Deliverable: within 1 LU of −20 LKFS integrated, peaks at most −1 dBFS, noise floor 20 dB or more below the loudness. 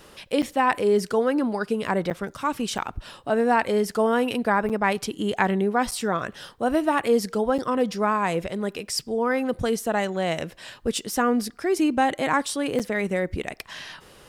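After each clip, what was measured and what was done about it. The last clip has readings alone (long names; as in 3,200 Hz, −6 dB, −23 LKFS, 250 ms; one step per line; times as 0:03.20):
number of dropouts 7; longest dropout 7.5 ms; integrated loudness −24.5 LKFS; sample peak −6.0 dBFS; target loudness −20.0 LKFS
→ repair the gap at 0:00.42/0:02.10/0:02.78/0:04.69/0:05.91/0:07.58/0:12.79, 7.5 ms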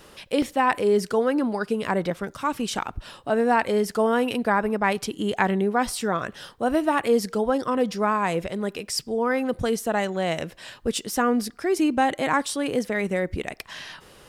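number of dropouts 0; integrated loudness −24.5 LKFS; sample peak −6.0 dBFS; target loudness −20.0 LKFS
→ level +4.5 dB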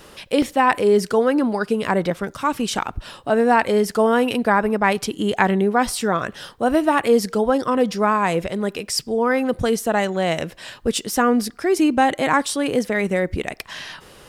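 integrated loudness −20.0 LKFS; sample peak −1.5 dBFS; background noise floor −47 dBFS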